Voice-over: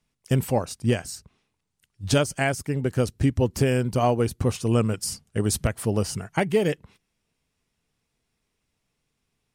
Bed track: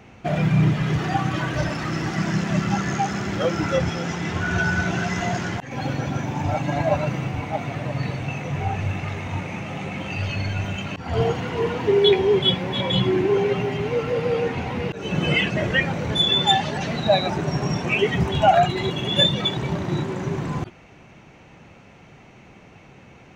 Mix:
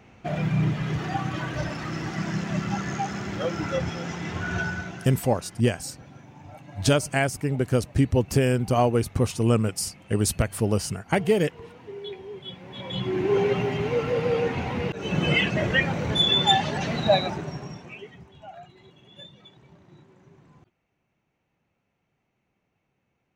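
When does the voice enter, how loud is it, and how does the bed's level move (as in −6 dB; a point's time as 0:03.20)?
4.75 s, +0.5 dB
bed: 0:04.60 −5.5 dB
0:05.24 −21 dB
0:12.43 −21 dB
0:13.37 −1.5 dB
0:17.14 −1.5 dB
0:18.29 −28 dB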